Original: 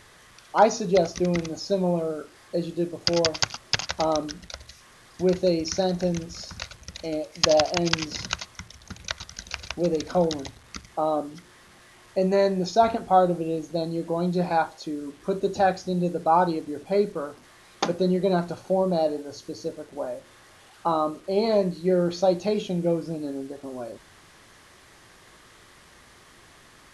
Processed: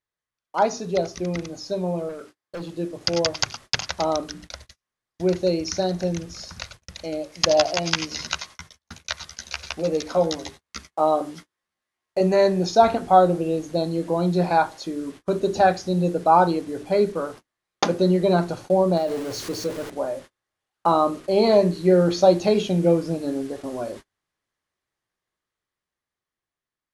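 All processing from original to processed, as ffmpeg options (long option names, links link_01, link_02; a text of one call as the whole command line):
ffmpeg -i in.wav -filter_complex "[0:a]asettb=1/sr,asplit=3[link_01][link_02][link_03];[link_01]atrim=end=2.094[link_04];[link_02]atrim=start=2.09:end=2.73,asetpts=PTS-STARTPTS,afade=type=in:duration=0.004:curve=qsin,afade=type=out:start_time=0.636:duration=0.004:curve=qsin,highpass=77,asoftclip=type=hard:threshold=-28.5dB[link_05];[link_03]atrim=start=2.726[link_06];[link_04][link_05]acrossfade=duration=0.004:curve1=hsin:curve2=qsin[link_07];[link_07][link_06]acrossfade=duration=0.004:curve1=qsin:curve2=hsin,asettb=1/sr,asplit=3[link_08][link_09][link_10];[link_08]atrim=end=7.574[link_11];[link_09]atrim=start=7.57:end=12.21,asetpts=PTS-STARTPTS,afade=type=in:duration=0.004:curve=qsin,afade=type=out:start_time=4.636:duration=0.004:curve=qsin,lowshelf=frequency=230:gain=-6.5,asplit=2[link_12][link_13];[link_13]adelay=13,volume=-4dB[link_14];[link_12][link_14]amix=inputs=2:normalize=0,atrim=end_sample=204624,aecho=1:1:89:0.0841,atrim=end_sample=204624[link_15];[link_10]atrim=start=12.206[link_16];[link_11][link_15]acrossfade=duration=0.004:curve1=hsin:curve2=qsin[link_17];[link_17][link_16]acrossfade=duration=0.004:curve1=qsin:curve2=hsin,asettb=1/sr,asplit=3[link_18][link_19][link_20];[link_18]atrim=end=18.974[link_21];[link_19]atrim=start=18.97:end=19.9,asetpts=PTS-STARTPTS,afade=type=in:duration=0.004:curve=qsin,afade=type=out:start_time=0.926:duration=0.004:curve=qsin,aeval=exprs='val(0)+0.5*0.0168*sgn(val(0))':channel_layout=same,acompressor=threshold=-24dB:ratio=5:attack=3.2:release=140:knee=1:detection=peak[link_22];[link_20]atrim=start=19.896[link_23];[link_21][link_22]acrossfade=duration=0.004:curve1=hsin:curve2=qsin[link_24];[link_24][link_23]acrossfade=duration=0.004:curve1=qsin:curve2=hsin,bandreject=frequency=50:width_type=h:width=6,bandreject=frequency=100:width_type=h:width=6,bandreject=frequency=150:width_type=h:width=6,bandreject=frequency=200:width_type=h:width=6,bandreject=frequency=250:width_type=h:width=6,bandreject=frequency=300:width_type=h:width=6,bandreject=frequency=350:width_type=h:width=6,bandreject=frequency=400:width_type=h:width=6,agate=range=-37dB:threshold=-43dB:ratio=16:detection=peak,dynaudnorm=framelen=760:gausssize=7:maxgain=11.5dB,volume=-2.5dB" out.wav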